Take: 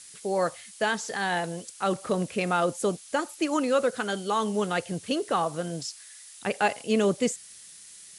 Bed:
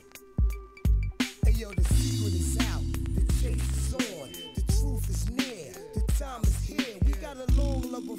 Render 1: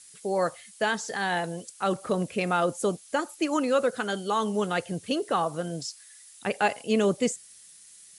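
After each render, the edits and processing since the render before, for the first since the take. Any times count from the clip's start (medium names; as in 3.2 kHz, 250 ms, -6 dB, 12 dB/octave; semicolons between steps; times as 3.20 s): noise reduction 6 dB, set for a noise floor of -48 dBFS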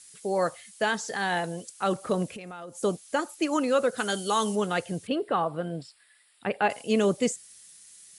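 2.26–2.83 s: compression 10:1, threshold -37 dBFS; 3.97–4.54 s: treble shelf 4.9 kHz -> 3.2 kHz +11 dB; 5.07–6.70 s: boxcar filter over 7 samples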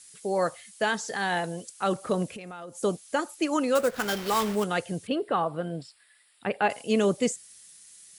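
3.75–4.64 s: sample-rate reducer 8.6 kHz, jitter 20%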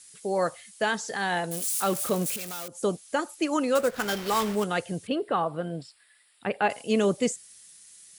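1.51–2.68 s: zero-crossing glitches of -24.5 dBFS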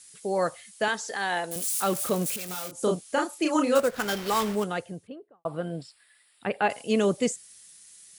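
0.88–1.56 s: Bessel high-pass 320 Hz; 2.46–3.80 s: doubling 33 ms -3 dB; 4.43–5.45 s: studio fade out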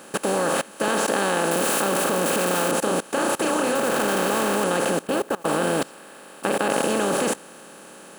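spectral levelling over time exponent 0.2; level held to a coarse grid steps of 22 dB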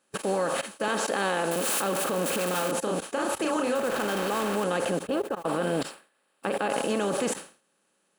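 expander on every frequency bin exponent 2; decay stretcher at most 150 dB/s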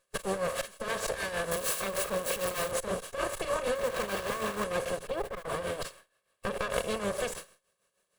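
comb filter that takes the minimum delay 1.8 ms; tremolo 6.5 Hz, depth 64%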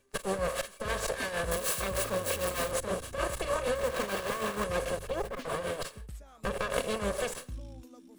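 add bed -17.5 dB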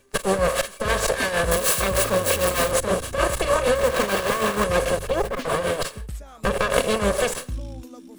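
trim +10.5 dB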